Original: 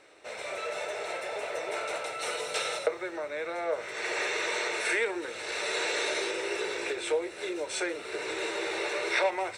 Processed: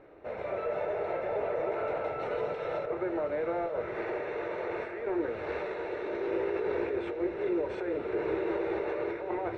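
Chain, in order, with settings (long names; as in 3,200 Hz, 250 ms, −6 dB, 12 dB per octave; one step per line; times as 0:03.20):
compressor whose output falls as the input rises −34 dBFS, ratio −1
Bessel low-pass filter 1,500 Hz, order 2
spectral tilt −3.5 dB per octave
on a send: feedback delay with all-pass diffusion 988 ms, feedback 43%, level −8.5 dB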